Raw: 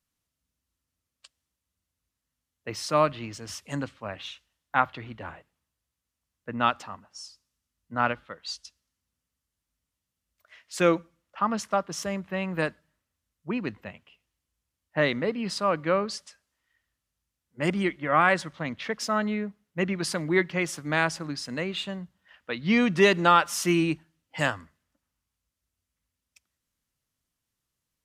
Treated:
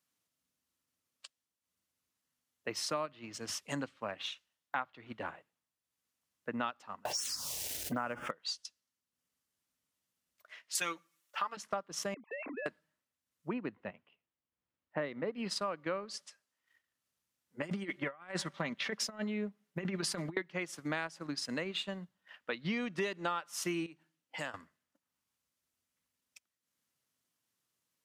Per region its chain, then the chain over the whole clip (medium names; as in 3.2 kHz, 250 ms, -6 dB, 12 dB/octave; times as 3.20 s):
7.05–8.31 s: companding laws mixed up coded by mu + touch-sensitive phaser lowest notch 180 Hz, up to 4 kHz, full sweep at -30.5 dBFS + level flattener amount 70%
10.75–11.57 s: tilt EQ +4 dB/octave + comb 6.8 ms, depth 69%
12.14–12.66 s: formants replaced by sine waves + compression 5:1, threshold -39 dBFS
13.53–15.35 s: low-pass 4.5 kHz + treble shelf 2.7 kHz -12 dB
17.62–20.37 s: compressor with a negative ratio -30 dBFS, ratio -0.5 + comb 5.1 ms, depth 39%
23.86–24.54 s: bass shelf 77 Hz -11 dB + compression 2:1, threshold -43 dBFS
whole clip: Bessel high-pass 210 Hz, order 2; transient shaper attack +1 dB, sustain -7 dB; compression 5:1, threshold -34 dBFS